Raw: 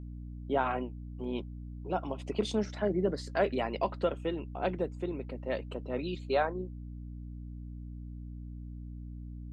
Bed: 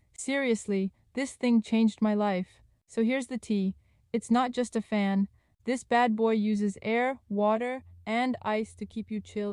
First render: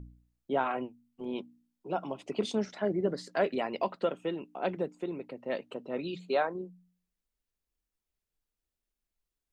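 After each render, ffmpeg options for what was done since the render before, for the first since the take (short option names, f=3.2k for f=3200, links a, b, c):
-af "bandreject=f=60:t=h:w=4,bandreject=f=120:t=h:w=4,bandreject=f=180:t=h:w=4,bandreject=f=240:t=h:w=4,bandreject=f=300:t=h:w=4"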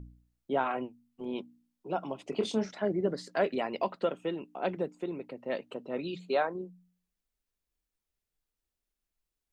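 -filter_complex "[0:a]asettb=1/sr,asplit=3[a][b][c];[a]atrim=end=2.304[d];[b]atrim=start=2.3:end=2.71,asetpts=PTS-STARTPTS,afade=t=in:d=0.004:c=qsin,afade=t=out:st=0.406:d=0.004:c=qsin,asplit=2[e][f];[f]adelay=27,volume=-8dB[g];[e][g]amix=inputs=2:normalize=0,atrim=end_sample=18081[h];[c]atrim=start=2.706[i];[d][h]acrossfade=d=0.004:c1=hsin:c2=qsin[j];[j][i]acrossfade=d=0.004:c1=qsin:c2=hsin"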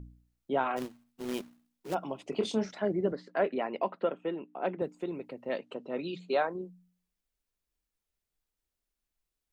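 -filter_complex "[0:a]asplit=3[a][b][c];[a]afade=t=out:st=0.76:d=0.02[d];[b]acrusher=bits=2:mode=log:mix=0:aa=0.000001,afade=t=in:st=0.76:d=0.02,afade=t=out:st=1.93:d=0.02[e];[c]afade=t=in:st=1.93:d=0.02[f];[d][e][f]amix=inputs=3:normalize=0,asettb=1/sr,asplit=3[g][h][i];[g]atrim=end=3.124[j];[h]atrim=start=3.12:end=4.82,asetpts=PTS-STARTPTS,afade=t=in:d=0.004:c=qsin,afade=t=out:st=1.696:d=0.004:c=qsin,highpass=180,lowpass=2.4k[k];[i]atrim=start=4.816[l];[j][k]acrossfade=d=0.004:c1=hsin:c2=qsin[m];[m][l]acrossfade=d=0.004:c1=qsin:c2=hsin,asettb=1/sr,asplit=3[n][o][p];[n]atrim=end=5.494[q];[o]atrim=start=5.49:end=6.33,asetpts=PTS-STARTPTS,afade=t=in:d=0.004:c=qsin,afade=t=out:st=0.836:d=0.004:c=qsin,highpass=130,lowpass=7.4k[r];[p]atrim=start=6.326[s];[q][r]acrossfade=d=0.004:c1=hsin:c2=qsin[t];[t][s]acrossfade=d=0.004:c1=qsin:c2=hsin"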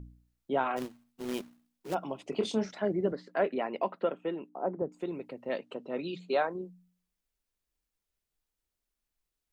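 -filter_complex "[0:a]asettb=1/sr,asplit=3[a][b][c];[a]atrim=end=4.494[d];[b]atrim=start=4.49:end=4.92,asetpts=PTS-STARTPTS,afade=t=in:d=0.004:c=qsin,afade=t=out:st=0.426:d=0.004:c=qsin,lowpass=f=1.2k:w=0.5412,lowpass=f=1.2k:w=1.3066[e];[c]atrim=start=4.916[f];[d][e]acrossfade=d=0.004:c1=hsin:c2=qsin[g];[g][f]acrossfade=d=0.004:c1=qsin:c2=hsin"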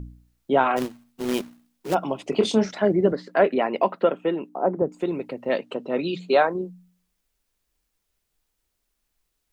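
-af "volume=10dB"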